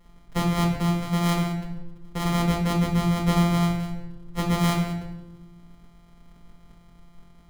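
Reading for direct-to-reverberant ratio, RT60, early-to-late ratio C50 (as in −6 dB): −4.0 dB, 0.90 s, 6.0 dB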